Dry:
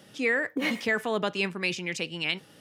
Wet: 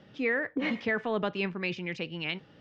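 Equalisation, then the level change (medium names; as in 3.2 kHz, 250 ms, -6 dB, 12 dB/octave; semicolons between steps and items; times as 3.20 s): low-pass 8.2 kHz 24 dB/octave; distance through air 240 m; bass shelf 82 Hz +10.5 dB; -1.5 dB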